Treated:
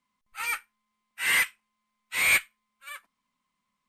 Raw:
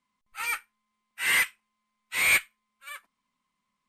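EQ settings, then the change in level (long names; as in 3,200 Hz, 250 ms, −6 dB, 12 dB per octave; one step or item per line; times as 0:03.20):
parametric band 380 Hz −2 dB 0.3 octaves
0.0 dB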